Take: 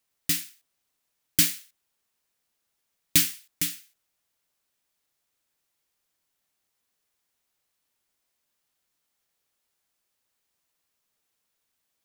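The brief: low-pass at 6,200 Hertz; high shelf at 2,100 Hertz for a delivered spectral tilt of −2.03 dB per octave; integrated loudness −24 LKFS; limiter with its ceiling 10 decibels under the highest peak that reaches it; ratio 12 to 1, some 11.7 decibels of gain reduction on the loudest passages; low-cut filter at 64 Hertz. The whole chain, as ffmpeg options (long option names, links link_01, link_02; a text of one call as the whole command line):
ffmpeg -i in.wav -af "highpass=64,lowpass=6200,highshelf=frequency=2100:gain=-4,acompressor=threshold=-34dB:ratio=12,volume=22.5dB,alimiter=limit=-3.5dB:level=0:latency=1" out.wav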